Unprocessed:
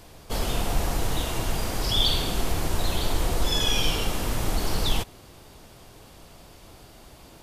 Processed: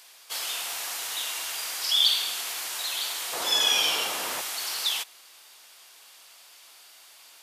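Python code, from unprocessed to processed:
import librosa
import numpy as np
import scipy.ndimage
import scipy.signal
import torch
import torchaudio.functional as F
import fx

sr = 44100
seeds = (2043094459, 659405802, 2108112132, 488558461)

y = fx.bessel_highpass(x, sr, hz=fx.steps((0.0, 2100.0), (3.32, 870.0), (4.4, 2000.0)), order=2)
y = y * librosa.db_to_amplitude(4.0)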